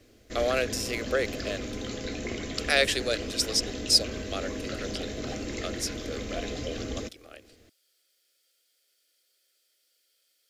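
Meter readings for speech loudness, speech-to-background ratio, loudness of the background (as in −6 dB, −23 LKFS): −28.5 LKFS, 7.0 dB, −35.5 LKFS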